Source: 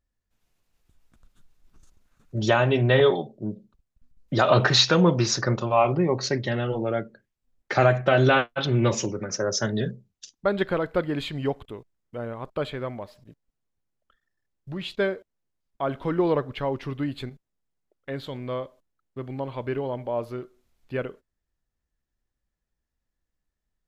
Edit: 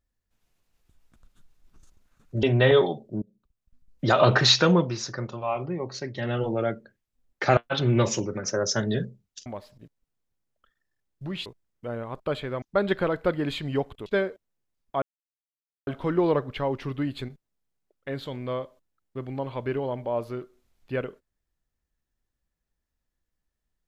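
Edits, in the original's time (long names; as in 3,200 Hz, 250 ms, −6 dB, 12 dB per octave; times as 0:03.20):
0:02.43–0:02.72: remove
0:03.51–0:04.41: fade in equal-power, from −23 dB
0:04.99–0:06.64: duck −8.5 dB, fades 0.22 s
0:07.86–0:08.43: remove
0:10.32–0:11.76: swap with 0:12.92–0:14.92
0:15.88: splice in silence 0.85 s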